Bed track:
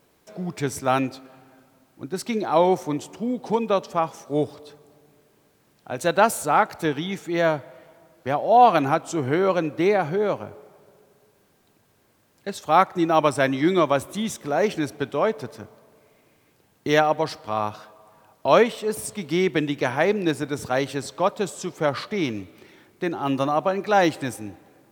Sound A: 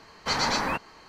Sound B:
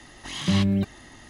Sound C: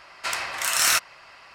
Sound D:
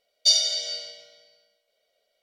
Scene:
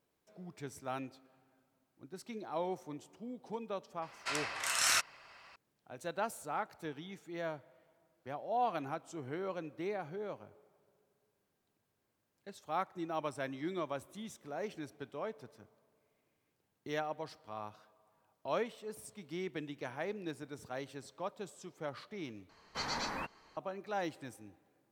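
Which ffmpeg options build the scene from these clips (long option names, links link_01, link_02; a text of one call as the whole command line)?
ffmpeg -i bed.wav -i cue0.wav -i cue1.wav -i cue2.wav -filter_complex "[0:a]volume=-19dB[link_01];[3:a]lowpass=10000[link_02];[link_01]asplit=2[link_03][link_04];[link_03]atrim=end=22.494[link_05];[1:a]atrim=end=1.08,asetpts=PTS-STARTPTS,volume=-12dB[link_06];[link_04]atrim=start=23.566[link_07];[link_02]atrim=end=1.54,asetpts=PTS-STARTPTS,volume=-9dB,afade=type=in:duration=0.004:curve=hsin,afade=type=out:start_time=1.536:duration=0.004:curve=hsin,adelay=4020[link_08];[link_05][link_06]acrossfade=duration=0.004:curve1=hsin:curve2=hsin[link_09];[link_09][link_07]acrossfade=duration=0.004:curve1=hsin:curve2=hsin[link_10];[link_10][link_08]amix=inputs=2:normalize=0" out.wav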